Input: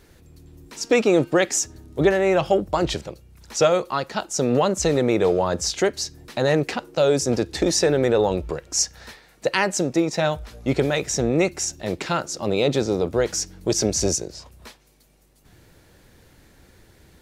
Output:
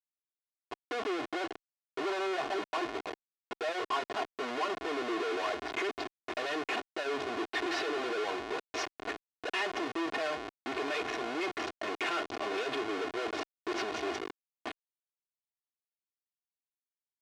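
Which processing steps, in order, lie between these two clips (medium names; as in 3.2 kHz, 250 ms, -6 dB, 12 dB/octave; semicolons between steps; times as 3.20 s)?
companding laws mixed up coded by mu; low-pass sweep 1 kHz -> 2.8 kHz, 4.00–6.31 s; Schmitt trigger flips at -31 dBFS; band-pass 390–3800 Hz; peak limiter -19.5 dBFS, peak gain reduction 3.5 dB; comb 2.8 ms, depth 77%; trim -7.5 dB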